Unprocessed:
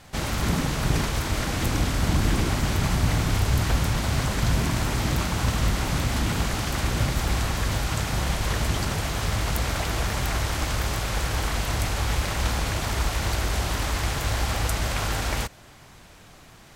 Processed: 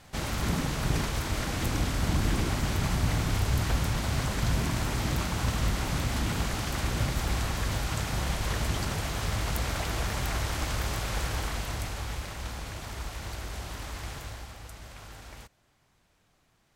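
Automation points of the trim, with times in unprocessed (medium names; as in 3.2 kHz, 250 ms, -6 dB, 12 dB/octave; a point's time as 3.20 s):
11.24 s -4.5 dB
12.40 s -12 dB
14.16 s -12 dB
14.56 s -19.5 dB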